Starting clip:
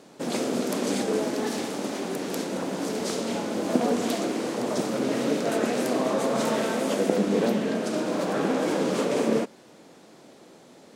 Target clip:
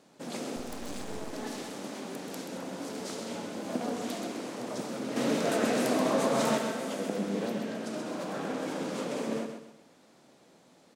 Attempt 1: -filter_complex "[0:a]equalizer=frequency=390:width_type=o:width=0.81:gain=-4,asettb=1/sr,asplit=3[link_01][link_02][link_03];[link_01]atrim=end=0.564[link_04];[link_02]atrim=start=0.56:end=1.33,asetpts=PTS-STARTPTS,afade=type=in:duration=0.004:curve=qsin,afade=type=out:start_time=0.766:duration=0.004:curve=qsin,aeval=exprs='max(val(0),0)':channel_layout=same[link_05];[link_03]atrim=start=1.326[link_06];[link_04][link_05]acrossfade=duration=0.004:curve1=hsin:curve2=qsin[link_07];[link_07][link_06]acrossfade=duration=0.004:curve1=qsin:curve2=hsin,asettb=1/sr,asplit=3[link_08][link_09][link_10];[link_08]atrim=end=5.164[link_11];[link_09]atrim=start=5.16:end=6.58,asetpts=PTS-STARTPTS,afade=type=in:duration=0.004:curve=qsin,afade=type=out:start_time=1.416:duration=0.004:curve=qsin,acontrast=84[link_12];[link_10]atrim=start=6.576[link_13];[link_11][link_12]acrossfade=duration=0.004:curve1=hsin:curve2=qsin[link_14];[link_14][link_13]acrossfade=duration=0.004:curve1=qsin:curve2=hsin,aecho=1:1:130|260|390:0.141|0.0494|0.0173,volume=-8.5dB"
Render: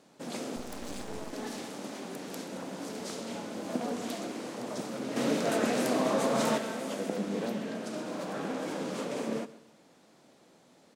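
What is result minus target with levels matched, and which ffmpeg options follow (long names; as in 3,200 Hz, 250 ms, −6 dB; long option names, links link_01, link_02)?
echo-to-direct −10 dB
-filter_complex "[0:a]equalizer=frequency=390:width_type=o:width=0.81:gain=-4,asettb=1/sr,asplit=3[link_01][link_02][link_03];[link_01]atrim=end=0.564[link_04];[link_02]atrim=start=0.56:end=1.33,asetpts=PTS-STARTPTS,afade=type=in:duration=0.004:curve=qsin,afade=type=out:start_time=0.766:duration=0.004:curve=qsin,aeval=exprs='max(val(0),0)':channel_layout=same[link_05];[link_03]atrim=start=1.326[link_06];[link_04][link_05]acrossfade=duration=0.004:curve1=hsin:curve2=qsin[link_07];[link_07][link_06]acrossfade=duration=0.004:curve1=qsin:curve2=hsin,asettb=1/sr,asplit=3[link_08][link_09][link_10];[link_08]atrim=end=5.164[link_11];[link_09]atrim=start=5.16:end=6.58,asetpts=PTS-STARTPTS,afade=type=in:duration=0.004:curve=qsin,afade=type=out:start_time=1.416:duration=0.004:curve=qsin,acontrast=84[link_12];[link_10]atrim=start=6.576[link_13];[link_11][link_12]acrossfade=duration=0.004:curve1=hsin:curve2=qsin[link_14];[link_14][link_13]acrossfade=duration=0.004:curve1=qsin:curve2=hsin,aecho=1:1:130|260|390|520:0.447|0.156|0.0547|0.0192,volume=-8.5dB"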